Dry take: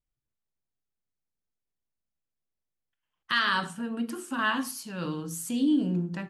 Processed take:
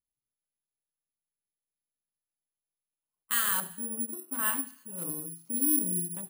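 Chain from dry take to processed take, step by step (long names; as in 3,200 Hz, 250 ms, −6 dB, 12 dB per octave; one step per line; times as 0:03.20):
adaptive Wiener filter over 25 samples
low-shelf EQ 92 Hz −8 dB
delay with a high-pass on its return 83 ms, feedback 56%, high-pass 1,600 Hz, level −17 dB
bad sample-rate conversion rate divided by 4×, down filtered, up zero stuff
level −7.5 dB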